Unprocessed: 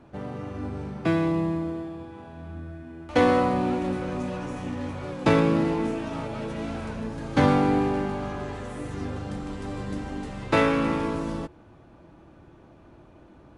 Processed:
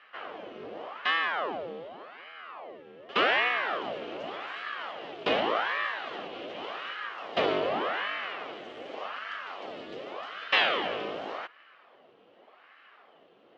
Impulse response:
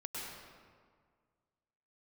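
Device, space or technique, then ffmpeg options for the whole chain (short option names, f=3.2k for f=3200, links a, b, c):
voice changer toy: -af "aeval=exprs='val(0)*sin(2*PI*800*n/s+800*0.85/0.86*sin(2*PI*0.86*n/s))':c=same,highpass=410,equalizer=f=930:t=q:w=4:g=-8,equalizer=f=1.5k:t=q:w=4:g=-4,equalizer=f=3k:t=q:w=4:g=10,lowpass=f=4.7k:w=0.5412,lowpass=f=4.7k:w=1.3066"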